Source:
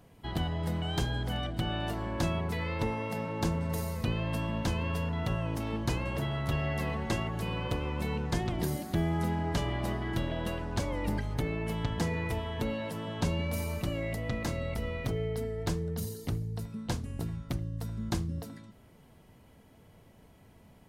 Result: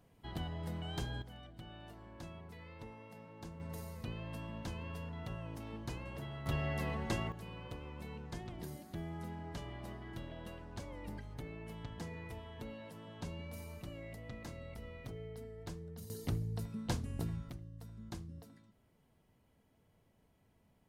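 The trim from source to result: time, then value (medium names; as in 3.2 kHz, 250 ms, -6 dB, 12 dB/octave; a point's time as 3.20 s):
-9 dB
from 1.22 s -19 dB
from 3.60 s -12 dB
from 6.46 s -5 dB
from 7.32 s -14 dB
from 16.10 s -3 dB
from 17.50 s -14 dB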